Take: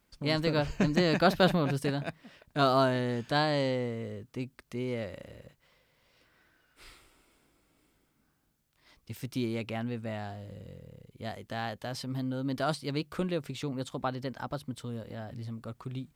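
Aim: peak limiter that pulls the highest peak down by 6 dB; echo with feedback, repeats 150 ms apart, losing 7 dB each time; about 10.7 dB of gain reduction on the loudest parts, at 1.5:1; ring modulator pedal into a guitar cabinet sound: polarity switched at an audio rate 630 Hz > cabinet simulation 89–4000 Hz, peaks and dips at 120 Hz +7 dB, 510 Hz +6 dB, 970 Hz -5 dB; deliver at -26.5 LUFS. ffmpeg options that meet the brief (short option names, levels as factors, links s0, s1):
-af "acompressor=threshold=0.00316:ratio=1.5,alimiter=level_in=1.68:limit=0.0631:level=0:latency=1,volume=0.596,aecho=1:1:150|300|450|600|750:0.447|0.201|0.0905|0.0407|0.0183,aeval=exprs='val(0)*sgn(sin(2*PI*630*n/s))':c=same,highpass=89,equalizer=f=120:t=q:w=4:g=7,equalizer=f=510:t=q:w=4:g=6,equalizer=f=970:t=q:w=4:g=-5,lowpass=f=4000:w=0.5412,lowpass=f=4000:w=1.3066,volume=4.73"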